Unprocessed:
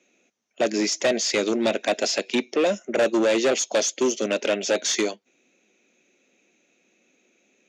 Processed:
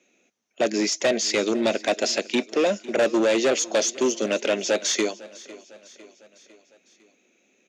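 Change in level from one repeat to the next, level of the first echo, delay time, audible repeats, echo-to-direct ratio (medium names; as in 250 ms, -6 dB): -5.0 dB, -20.0 dB, 503 ms, 3, -18.5 dB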